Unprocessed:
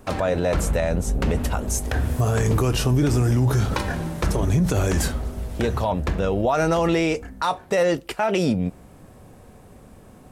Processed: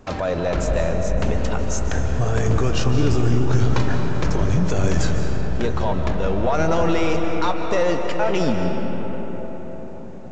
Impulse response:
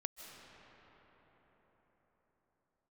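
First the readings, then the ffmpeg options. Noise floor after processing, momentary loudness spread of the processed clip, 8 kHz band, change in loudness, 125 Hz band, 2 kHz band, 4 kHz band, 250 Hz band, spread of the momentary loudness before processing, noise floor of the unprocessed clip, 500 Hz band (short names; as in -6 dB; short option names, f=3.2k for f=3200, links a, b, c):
-30 dBFS, 9 LU, -3.0 dB, +0.5 dB, +0.5 dB, +0.5 dB, 0.0 dB, +0.5 dB, 6 LU, -47 dBFS, +1.0 dB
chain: -filter_complex "[0:a]asplit=2[a][b];[b]aeval=exprs='clip(val(0),-1,0.0335)':c=same,volume=-6dB[c];[a][c]amix=inputs=2:normalize=0[d];[1:a]atrim=start_sample=2205[e];[d][e]afir=irnorm=-1:irlink=0,aresample=16000,aresample=44100"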